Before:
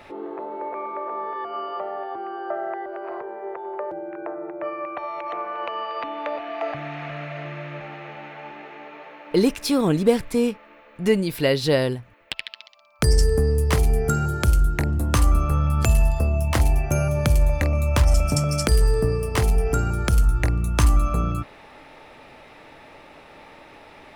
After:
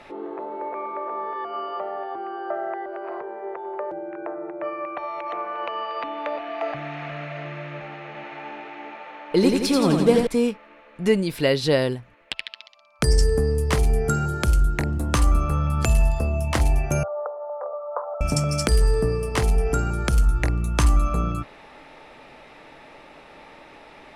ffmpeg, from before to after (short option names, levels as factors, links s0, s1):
-filter_complex "[0:a]asettb=1/sr,asplit=3[s0][s1][s2];[s0]atrim=end=8.064[s3];[s1]atrim=start=8.06:end=10.27,asetpts=PTS-STARTPTS,afade=t=in:d=0.004:c=qsin,afade=t=out:st=2.206:d=0.004:c=qsin,aecho=1:1:86|172|258|344|430|516|602|688:0.631|0.366|0.212|0.123|0.0714|0.0414|0.024|0.0139,atrim=end_sample=97461[s4];[s2]atrim=start=10.266[s5];[s3][s4]acrossfade=d=0.004:c1=hsin:c2=qsin[s6];[s6][s5]acrossfade=d=0.004:c1=qsin:c2=hsin,asettb=1/sr,asplit=3[s7][s8][s9];[s7]atrim=end=17.034[s10];[s8]atrim=start=17.03:end=18.21,asetpts=PTS-STARTPTS,afade=t=in:d=0.004:c=qsin,afade=t=out:st=1.176:d=0.004:c=qsin,asuperpass=centerf=780:order=12:qfactor=0.92[s11];[s9]atrim=start=18.206[s12];[s10][s11]acrossfade=d=0.004:c1=hsin:c2=qsin[s13];[s13][s12]acrossfade=d=0.004:c1=qsin:c2=hsin,lowpass=11000,equalizer=f=92:t=o:w=0.31:g=-13.5"